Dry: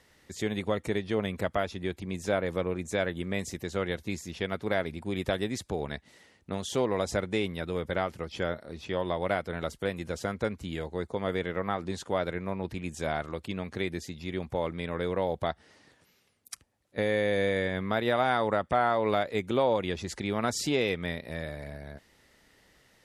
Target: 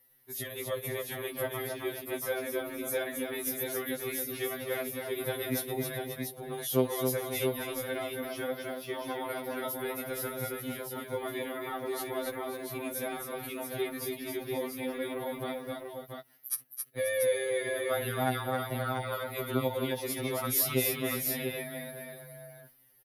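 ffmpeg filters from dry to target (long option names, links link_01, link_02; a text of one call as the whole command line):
ffmpeg -i in.wav -filter_complex "[0:a]agate=range=-10dB:threshold=-49dB:ratio=16:detection=peak,acrossover=split=340|3000[link_01][link_02][link_03];[link_02]acompressor=threshold=-29dB:ratio=6[link_04];[link_01][link_04][link_03]amix=inputs=3:normalize=0,aecho=1:1:51|269|534|687:0.112|0.562|0.237|0.531,acrossover=split=2400[link_05][link_06];[link_06]aexciter=amount=13.5:drive=9.9:freq=11000[link_07];[link_05][link_07]amix=inputs=2:normalize=0,afftfilt=real='re*2.45*eq(mod(b,6),0)':imag='im*2.45*eq(mod(b,6),0)':win_size=2048:overlap=0.75,volume=-1dB" out.wav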